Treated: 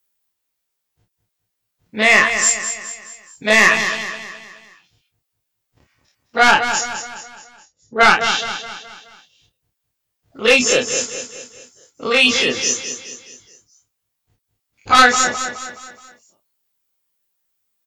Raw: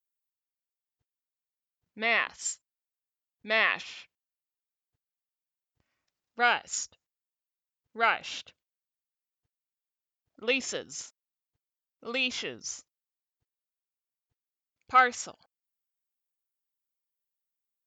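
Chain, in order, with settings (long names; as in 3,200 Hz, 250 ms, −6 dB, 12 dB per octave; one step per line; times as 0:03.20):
every bin's largest magnitude spread in time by 60 ms
reverb reduction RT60 0.62 s
in parallel at −3 dB: sine wavefolder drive 10 dB, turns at −6 dBFS
0:06.51–0:08.20: on the sum: low-pass that shuts in the quiet parts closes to 460 Hz, open at −9.5 dBFS
double-tracking delay 28 ms −5.5 dB
on a send: repeating echo 211 ms, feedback 46%, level −9 dB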